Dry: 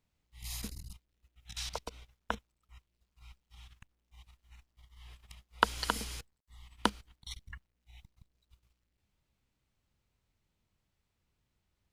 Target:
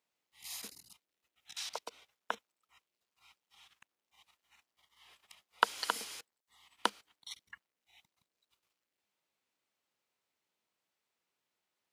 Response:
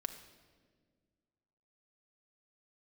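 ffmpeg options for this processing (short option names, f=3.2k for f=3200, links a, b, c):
-af "highpass=430,volume=-1dB"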